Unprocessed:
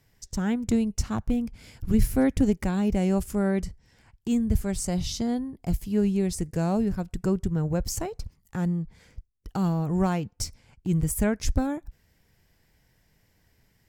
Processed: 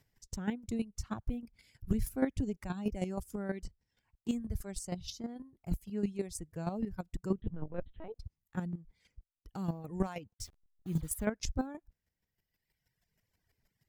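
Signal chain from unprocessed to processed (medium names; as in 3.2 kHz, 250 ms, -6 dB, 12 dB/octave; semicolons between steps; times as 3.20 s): 10.34–11.25 s: send-on-delta sampling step -38 dBFS; reverb removal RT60 1.8 s; 4.92–5.36 s: compression, threshold -29 dBFS, peak gain reduction 5 dB; square tremolo 6.3 Hz, depth 65%, duty 15%; 7.38–8.19 s: LPC vocoder at 8 kHz pitch kept; trim -3.5 dB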